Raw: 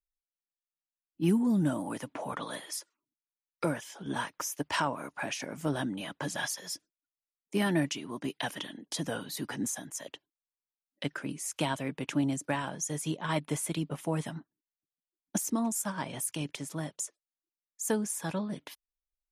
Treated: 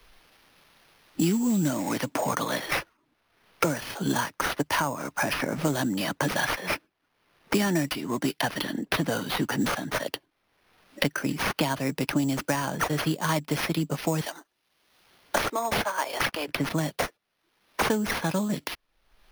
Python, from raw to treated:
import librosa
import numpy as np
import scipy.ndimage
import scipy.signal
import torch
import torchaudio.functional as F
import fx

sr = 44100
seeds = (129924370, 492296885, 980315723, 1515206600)

y = fx.highpass(x, sr, hz=440.0, slope=24, at=(14.21, 16.48))
y = fx.sample_hold(y, sr, seeds[0], rate_hz=7600.0, jitter_pct=0)
y = fx.band_squash(y, sr, depth_pct=100)
y = y * 10.0 ** (6.5 / 20.0)